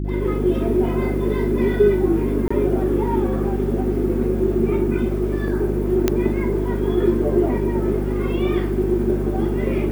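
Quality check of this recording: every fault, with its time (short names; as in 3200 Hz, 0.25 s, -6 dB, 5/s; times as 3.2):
hum 50 Hz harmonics 7 -24 dBFS
2.48–2.5 gap 25 ms
6.08 pop -3 dBFS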